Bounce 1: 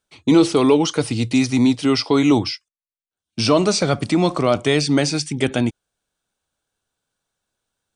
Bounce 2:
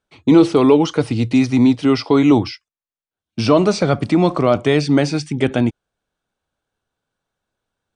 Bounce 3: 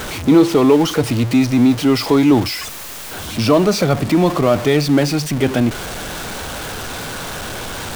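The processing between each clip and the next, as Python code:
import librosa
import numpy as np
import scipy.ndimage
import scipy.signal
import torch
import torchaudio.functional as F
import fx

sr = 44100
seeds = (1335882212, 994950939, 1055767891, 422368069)

y1 = fx.lowpass(x, sr, hz=2000.0, slope=6)
y1 = y1 * 10.0 ** (3.0 / 20.0)
y2 = y1 + 0.5 * 10.0 ** (-19.5 / 20.0) * np.sign(y1)
y2 = y2 * 10.0 ** (-1.0 / 20.0)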